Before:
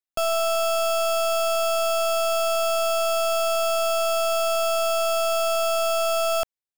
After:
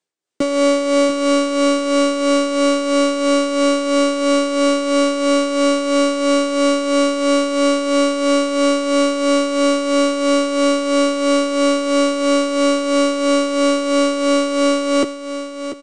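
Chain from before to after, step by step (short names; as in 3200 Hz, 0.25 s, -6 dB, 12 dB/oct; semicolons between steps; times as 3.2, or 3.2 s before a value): HPF 230 Hz 24 dB/oct; bell 910 Hz +11.5 dB 0.97 oct; comb 5.3 ms, depth 49%; soft clip -14 dBFS, distortion -19 dB; wide varispeed 0.428×; tremolo 3 Hz, depth 57%; feedback echo 0.69 s, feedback 25%, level -10.5 dB; gain +8.5 dB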